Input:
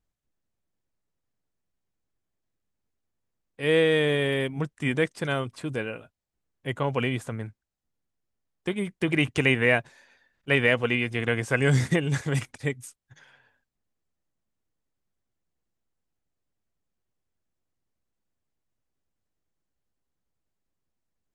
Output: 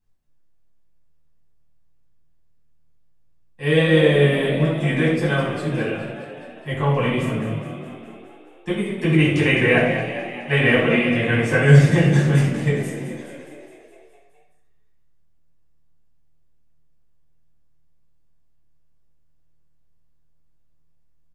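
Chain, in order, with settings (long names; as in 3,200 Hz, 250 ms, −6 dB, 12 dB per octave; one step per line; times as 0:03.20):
flanger 1.5 Hz, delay 8.6 ms, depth 7.2 ms, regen +81%
on a send: echo with shifted repeats 209 ms, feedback 64%, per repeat +39 Hz, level −10.5 dB
on the sum: rectangular room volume 1,000 cubic metres, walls furnished, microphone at 9.2 metres
level −1 dB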